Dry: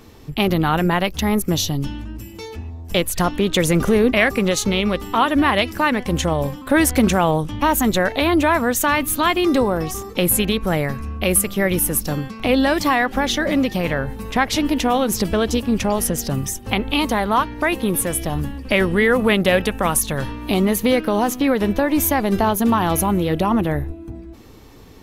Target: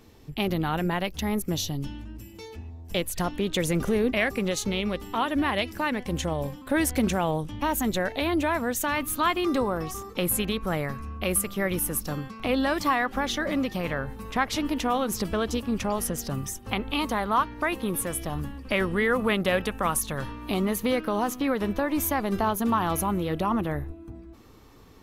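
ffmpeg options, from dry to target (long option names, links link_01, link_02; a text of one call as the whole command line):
ffmpeg -i in.wav -af "asetnsamples=nb_out_samples=441:pad=0,asendcmd='8.96 equalizer g 5.5',equalizer=frequency=1200:width=2.6:gain=-2.5,volume=-8.5dB" out.wav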